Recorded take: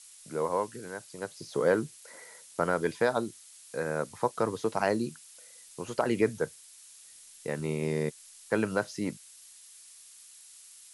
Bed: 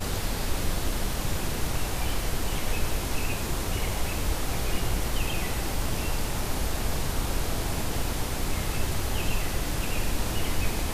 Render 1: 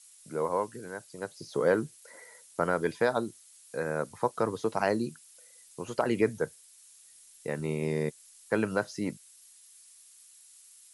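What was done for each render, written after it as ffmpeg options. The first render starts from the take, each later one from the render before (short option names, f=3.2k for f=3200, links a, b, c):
-af "afftdn=nr=6:nf=-53"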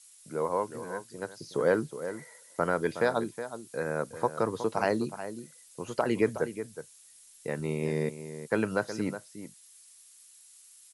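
-filter_complex "[0:a]asplit=2[a][b];[b]adelay=367.3,volume=-11dB,highshelf=f=4k:g=-8.27[c];[a][c]amix=inputs=2:normalize=0"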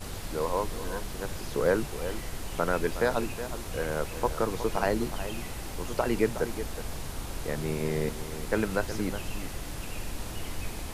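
-filter_complex "[1:a]volume=-8.5dB[a];[0:a][a]amix=inputs=2:normalize=0"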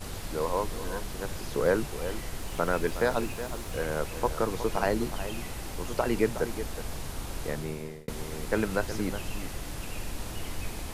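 -filter_complex "[0:a]asettb=1/sr,asplit=3[a][b][c];[a]atrim=end=2.404[d];[b]atrim=start=2.4:end=3.83,asetpts=PTS-STARTPTS,afade=t=in:d=0.004:c=qsin,afade=t=out:st=1.426:d=0.004:c=qsin,aeval=exprs='val(0)*gte(abs(val(0)),0.00376)':c=same[e];[c]atrim=start=3.826[f];[d][e]acrossfade=d=0.004:c1=hsin:c2=qsin[g];[g][f]acrossfade=d=0.004:c1=qsin:c2=hsin,asplit=2[h][i];[h]atrim=end=8.08,asetpts=PTS-STARTPTS,afade=t=out:st=7.47:d=0.61[j];[i]atrim=start=8.08,asetpts=PTS-STARTPTS,afade=t=in:d=0.004:c=hsin[k];[j][k]concat=n=2:v=0:a=1"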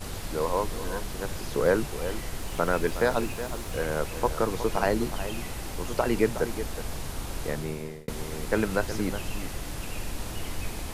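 -af "volume=2dB"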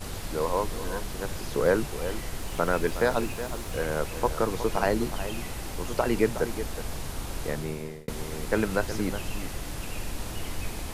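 -af anull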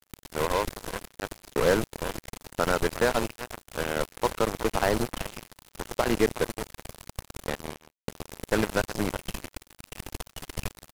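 -af "acrusher=bits=3:mix=0:aa=0.5"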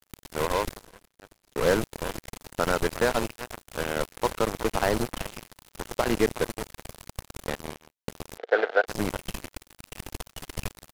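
-filter_complex "[0:a]asettb=1/sr,asplit=3[a][b][c];[a]atrim=end=8.384[d];[b]atrim=start=8.38:end=8.86,asetpts=PTS-STARTPTS,afade=t=in:d=0.004:c=qsin,afade=t=out:st=0.476:d=0.004:c=qsin,highpass=f=430:w=0.5412,highpass=f=430:w=1.3066,equalizer=f=470:t=q:w=4:g=9,equalizer=f=720:t=q:w=4:g=8,equalizer=f=1k:t=q:w=4:g=-8,equalizer=f=1.5k:t=q:w=4:g=8,equalizer=f=2.6k:t=q:w=4:g=-6,lowpass=f=3.6k:w=0.5412,lowpass=f=3.6k:w=1.3066[e];[c]atrim=start=8.856[f];[d][e]acrossfade=d=0.004:c1=hsin:c2=qsin[g];[g][f]acrossfade=d=0.004:c1=qsin:c2=hsin,asplit=3[h][i][j];[h]atrim=end=0.87,asetpts=PTS-STARTPTS,afade=t=out:st=0.7:d=0.17:silence=0.141254[k];[i]atrim=start=0.87:end=1.48,asetpts=PTS-STARTPTS,volume=-17dB[l];[j]atrim=start=1.48,asetpts=PTS-STARTPTS,afade=t=in:d=0.17:silence=0.141254[m];[k][l][m]concat=n=3:v=0:a=1"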